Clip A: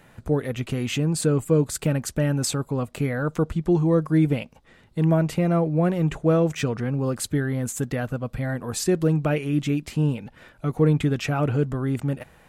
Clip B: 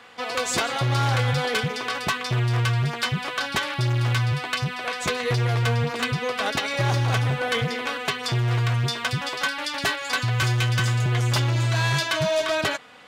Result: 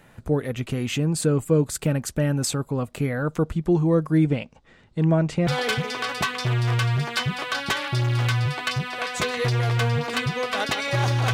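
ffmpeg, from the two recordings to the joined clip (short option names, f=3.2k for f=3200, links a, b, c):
-filter_complex "[0:a]asettb=1/sr,asplit=3[a][b][c];[a]atrim=end=4.244[d];[b]atrim=start=4.24:end=5.47,asetpts=PTS-STARTPTS,afade=t=in:d=0.004:c=qsin,afade=t=out:st=1.226:d=0.004:c=qsin,lowpass=f=8k:w=0.5412,lowpass=f=8k:w=1.3066[e];[c]atrim=start=5.466[f];[d][e]acrossfade=d=0.004:c1=hsin:c2=qsin[g];[g][f]acrossfade=d=0.004:c1=qsin:c2=hsin,apad=whole_dur=11.33,atrim=end=11.33,atrim=end=5.472[h];[1:a]atrim=start=1.328:end=7.19[i];[h][i]acrossfade=d=0.004:c1=hsin:c2=hsin"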